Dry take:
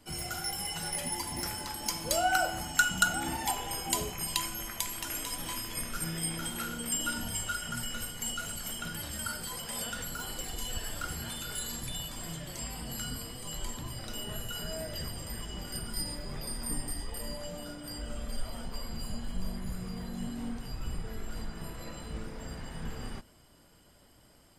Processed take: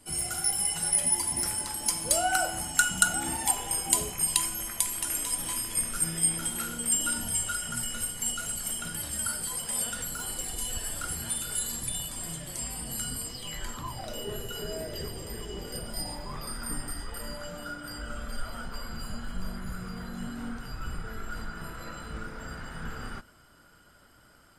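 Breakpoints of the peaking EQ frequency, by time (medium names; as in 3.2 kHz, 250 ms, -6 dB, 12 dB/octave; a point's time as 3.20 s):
peaking EQ +15 dB 0.4 oct
13.23 s 9.3 kHz
13.51 s 2.2 kHz
14.29 s 410 Hz
15.63 s 410 Hz
16.55 s 1.4 kHz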